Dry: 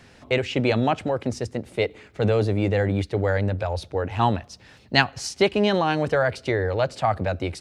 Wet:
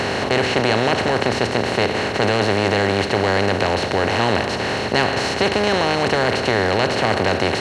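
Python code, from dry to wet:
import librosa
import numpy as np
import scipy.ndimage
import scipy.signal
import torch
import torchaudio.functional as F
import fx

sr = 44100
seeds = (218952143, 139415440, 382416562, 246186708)

y = fx.bin_compress(x, sr, power=0.2)
y = y * 10.0 ** (-5.0 / 20.0)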